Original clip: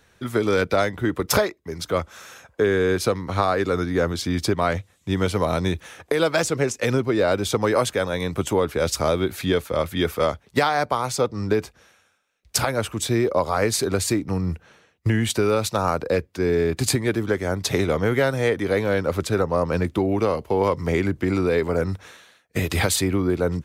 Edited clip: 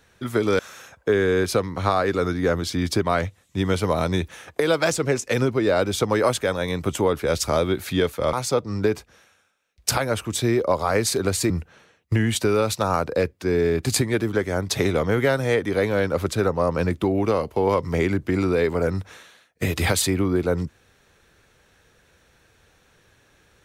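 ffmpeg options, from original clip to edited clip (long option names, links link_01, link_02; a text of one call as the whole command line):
ffmpeg -i in.wav -filter_complex "[0:a]asplit=4[link_01][link_02][link_03][link_04];[link_01]atrim=end=0.592[link_05];[link_02]atrim=start=2.108:end=9.852[link_06];[link_03]atrim=start=10.998:end=14.172[link_07];[link_04]atrim=start=14.438[link_08];[link_05][link_06]acrossfade=duration=0.004:curve1=hsin:curve2=hsin[link_09];[link_09][link_07]acrossfade=duration=0.004:curve1=hsin:curve2=hsin[link_10];[link_10][link_08]acrossfade=duration=0.004:curve1=hsin:curve2=hsin" out.wav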